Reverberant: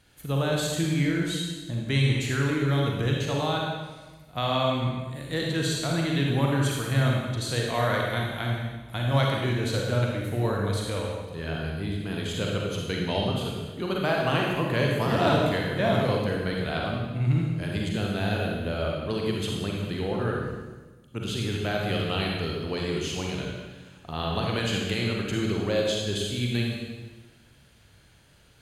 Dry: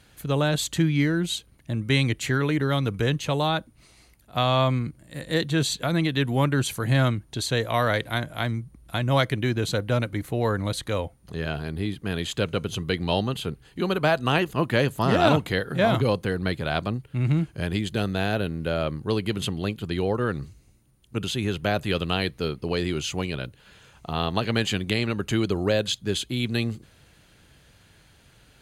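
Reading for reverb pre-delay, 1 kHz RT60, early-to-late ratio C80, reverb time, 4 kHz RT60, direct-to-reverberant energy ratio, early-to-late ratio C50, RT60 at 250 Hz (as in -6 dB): 36 ms, 1.3 s, 2.5 dB, 1.3 s, 1.2 s, -1.5 dB, 0.0 dB, 1.5 s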